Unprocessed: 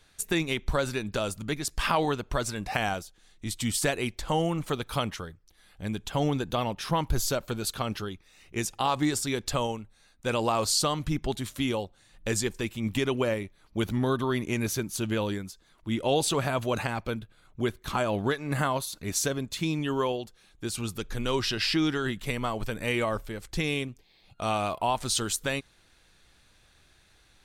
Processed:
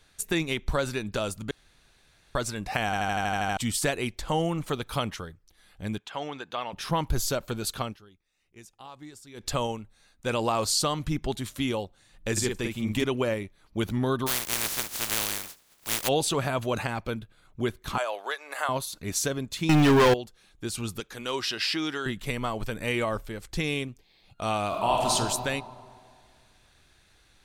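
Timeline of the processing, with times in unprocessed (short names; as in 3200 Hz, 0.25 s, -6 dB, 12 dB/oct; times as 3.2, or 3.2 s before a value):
1.51–2.35 room tone
2.85 stutter in place 0.08 s, 9 plays
5.98–6.73 band-pass 1700 Hz, Q 0.66
7.82–9.49 dip -19 dB, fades 0.15 s
12.32–13.04 doubler 48 ms -4 dB
14.26–16.07 spectral contrast lowered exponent 0.12
17.98–18.69 HPF 560 Hz 24 dB/oct
19.69–20.14 sample leveller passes 5
21–22.06 HPF 480 Hz 6 dB/oct
24.67–25.11 reverb throw, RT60 2 s, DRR -2.5 dB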